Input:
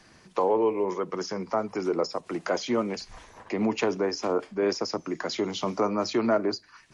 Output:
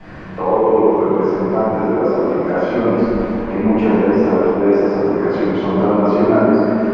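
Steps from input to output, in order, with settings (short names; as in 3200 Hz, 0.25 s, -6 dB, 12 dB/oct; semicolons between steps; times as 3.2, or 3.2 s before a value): zero-crossing step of -36 dBFS; LPF 1600 Hz 12 dB/oct; notch 1200 Hz, Q 27; reverb RT60 3.0 s, pre-delay 3 ms, DRR -15 dB; gain -11.5 dB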